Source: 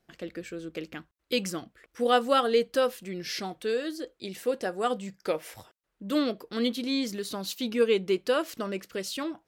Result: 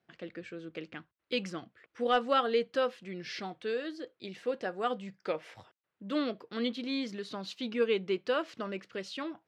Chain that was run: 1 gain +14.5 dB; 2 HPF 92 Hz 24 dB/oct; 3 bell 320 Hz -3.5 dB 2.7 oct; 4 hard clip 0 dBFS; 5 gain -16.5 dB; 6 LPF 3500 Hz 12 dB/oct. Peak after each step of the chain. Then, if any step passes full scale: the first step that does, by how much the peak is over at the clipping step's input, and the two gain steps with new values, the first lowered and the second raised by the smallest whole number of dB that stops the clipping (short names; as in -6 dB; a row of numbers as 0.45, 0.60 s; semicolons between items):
+5.0, +5.0, +4.0, 0.0, -16.5, -16.0 dBFS; step 1, 4.0 dB; step 1 +10.5 dB, step 5 -12.5 dB